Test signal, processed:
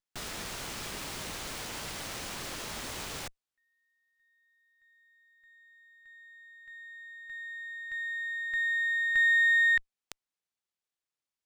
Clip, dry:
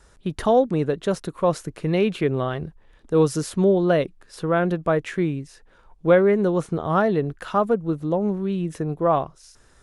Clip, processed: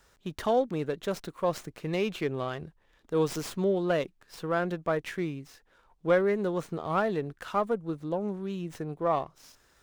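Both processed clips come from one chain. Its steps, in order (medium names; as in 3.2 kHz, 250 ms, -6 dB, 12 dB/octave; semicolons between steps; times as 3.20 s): tilt EQ +1.5 dB/octave; sliding maximum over 3 samples; trim -6.5 dB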